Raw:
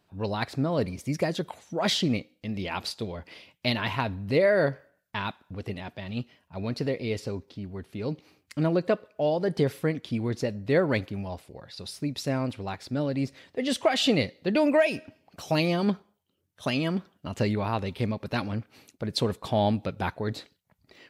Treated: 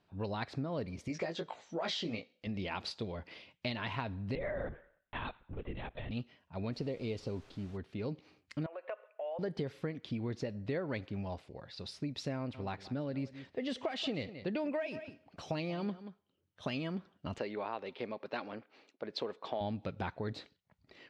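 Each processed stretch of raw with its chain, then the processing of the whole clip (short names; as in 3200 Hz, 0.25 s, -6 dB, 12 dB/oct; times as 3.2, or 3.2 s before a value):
1.08–2.47 steep low-pass 8100 Hz 48 dB/oct + tone controls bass -10 dB, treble +1 dB + doubler 18 ms -4.5 dB
4.35–6.11 compressor 2:1, threshold -32 dBFS + LPC vocoder at 8 kHz whisper
6.72–7.76 bell 1700 Hz -9.5 dB 0.71 oct + added noise pink -55 dBFS
8.66–9.39 elliptic band-pass 550–2700 Hz, stop band 60 dB + compressor 4:1, threshold -33 dBFS
12.36–16.7 high shelf 5100 Hz -4 dB + echo 0.181 s -17.5 dB
17.38–19.61 Chebyshev high-pass 420 Hz + air absorption 110 m
whole clip: LPF 4900 Hz 12 dB/oct; compressor 5:1, threshold -30 dBFS; gain -4 dB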